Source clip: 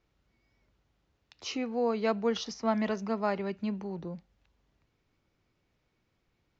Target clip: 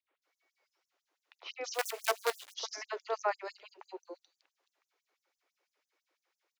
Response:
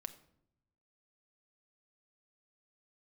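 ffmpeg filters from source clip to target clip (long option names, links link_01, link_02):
-filter_complex "[0:a]acrossover=split=330|3200[link_01][link_02][link_03];[link_01]adelay=40[link_04];[link_03]adelay=220[link_05];[link_04][link_02][link_05]amix=inputs=3:normalize=0,asettb=1/sr,asplit=3[link_06][link_07][link_08];[link_06]atrim=end=1.744[link_09];[link_07]atrim=start=1.74:end=2.54,asetpts=PTS-STARTPTS,afade=type=in:duration=0.004:curve=qsin,afade=type=out:start_time=0.796:duration=0.004:curve=qsin,acrusher=bits=5:dc=4:mix=0:aa=0.000001[link_10];[link_08]atrim=start=2.536[link_11];[link_09][link_10]acrossfade=duration=0.004:curve1=hsin:curve2=qsin[link_12];[link_12][link_11]acrossfade=duration=0.004:curve1=qsin:curve2=hsin,afftfilt=real='re*gte(b*sr/1024,280*pow(5800/280,0.5+0.5*sin(2*PI*6*pts/sr)))':imag='im*gte(b*sr/1024,280*pow(5800/280,0.5+0.5*sin(2*PI*6*pts/sr)))':win_size=1024:overlap=0.75,volume=1dB"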